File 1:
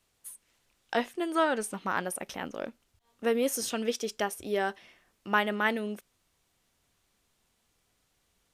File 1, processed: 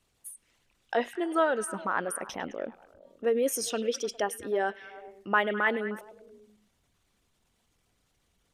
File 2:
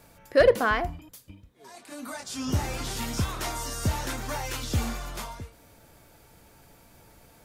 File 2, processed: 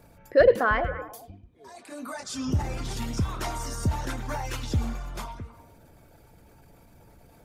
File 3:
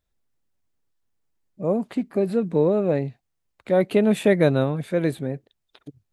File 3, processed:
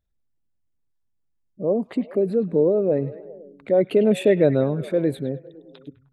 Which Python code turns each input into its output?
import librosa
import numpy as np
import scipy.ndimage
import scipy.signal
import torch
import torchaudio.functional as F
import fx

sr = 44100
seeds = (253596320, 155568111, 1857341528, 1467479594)

y = fx.envelope_sharpen(x, sr, power=1.5)
y = fx.echo_stepped(y, sr, ms=102, hz=2800.0, octaves=-0.7, feedback_pct=70, wet_db=-10)
y = y * librosa.db_to_amplitude(1.0)